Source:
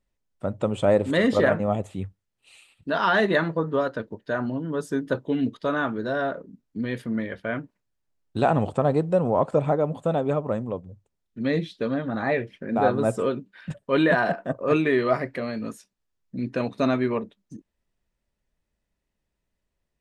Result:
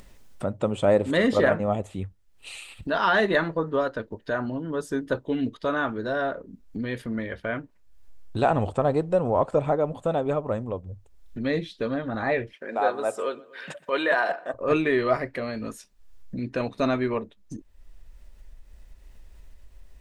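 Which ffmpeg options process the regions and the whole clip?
-filter_complex "[0:a]asettb=1/sr,asplit=3[s0][s1][s2];[s0]atrim=end=12.524[s3];[s1]atrim=start=12.52:end=14.54,asetpts=PTS-STARTPTS,afade=t=in:d=0.004:c=qsin,afade=t=out:st=2.016:d=0.004:c=qsin,highpass=480,asplit=2[s4][s5];[s5]adelay=122,lowpass=f=3500:p=1,volume=0.0708,asplit=2[s6][s7];[s7]adelay=122,lowpass=f=3500:p=1,volume=0.51,asplit=2[s8][s9];[s9]adelay=122,lowpass=f=3500:p=1,volume=0.51[s10];[s4][s6][s8][s10]amix=inputs=4:normalize=0,atrim=end_sample=89082[s11];[s2]atrim=start=14.536[s12];[s3][s11]acrossfade=d=0.004:c1=hsin:c2=qsin[s13];[s13][s12]acrossfade=d=0.004:c1=qsin:c2=hsin,asubboost=boost=8.5:cutoff=52,acompressor=mode=upward:threshold=0.0398:ratio=2.5"

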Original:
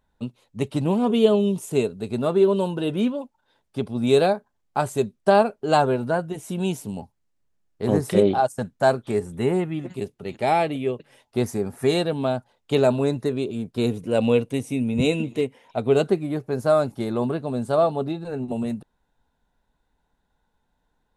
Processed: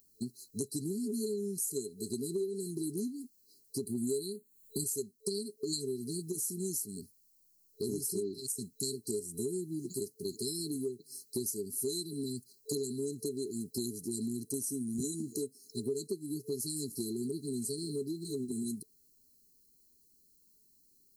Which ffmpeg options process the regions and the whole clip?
-filter_complex "[0:a]asettb=1/sr,asplit=3[s0][s1][s2];[s0]atrim=end=3.864[s3];[s1]atrim=start=3.86:end=4.84,asetpts=PTS-STARTPTS,afade=t=in:d=0.004:c=qsin,afade=t=out:st=0.976:d=0.004:c=qsin,acontrast=88,asuperstop=centerf=5400:order=4:qfactor=2.1[s4];[s2]atrim=start=4.836[s5];[s3][s4]acrossfade=d=0.004:c1=hsin:c2=qsin[s6];[s6][s5]acrossfade=d=0.004:c1=qsin:c2=hsin,afftfilt=real='re*(1-between(b*sr/4096,440,4000))':imag='im*(1-between(b*sr/4096,440,4000))':win_size=4096:overlap=0.75,aemphasis=mode=production:type=riaa,acompressor=threshold=0.0112:ratio=6,volume=1.78"

